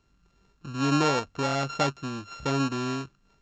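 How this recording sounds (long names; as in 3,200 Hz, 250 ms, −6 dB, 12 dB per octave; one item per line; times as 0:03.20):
a buzz of ramps at a fixed pitch in blocks of 32 samples
mu-law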